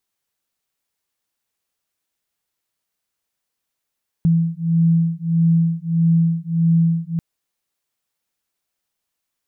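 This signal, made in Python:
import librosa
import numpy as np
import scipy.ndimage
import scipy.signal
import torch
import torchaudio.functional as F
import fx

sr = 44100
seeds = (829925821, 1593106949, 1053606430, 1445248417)

y = fx.two_tone_beats(sr, length_s=2.94, hz=165.0, beat_hz=1.6, level_db=-17.0)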